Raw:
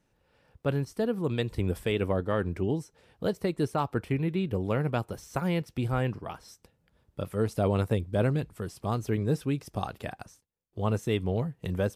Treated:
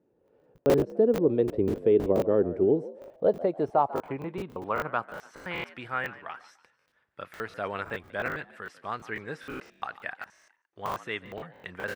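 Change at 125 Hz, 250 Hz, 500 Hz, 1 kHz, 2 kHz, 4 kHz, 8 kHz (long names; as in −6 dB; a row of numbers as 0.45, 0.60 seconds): −10.5 dB, −1.0 dB, +4.0 dB, +3.5 dB, +4.5 dB, −3.5 dB, can't be measured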